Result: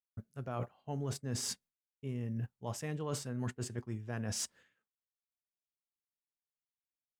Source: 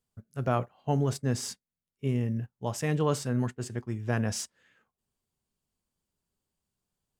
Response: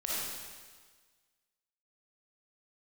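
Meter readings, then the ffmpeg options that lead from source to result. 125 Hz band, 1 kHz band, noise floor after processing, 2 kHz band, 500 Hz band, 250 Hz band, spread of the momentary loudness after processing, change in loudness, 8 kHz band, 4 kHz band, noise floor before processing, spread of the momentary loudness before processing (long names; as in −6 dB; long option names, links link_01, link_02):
−9.0 dB, −11.5 dB, below −85 dBFS, −9.5 dB, −11.0 dB, −10.0 dB, 5 LU, −9.0 dB, −2.5 dB, −3.0 dB, below −85 dBFS, 9 LU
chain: -af "agate=range=-33dB:threshold=-54dB:ratio=3:detection=peak,areverse,acompressor=threshold=-37dB:ratio=12,areverse,volume=2.5dB"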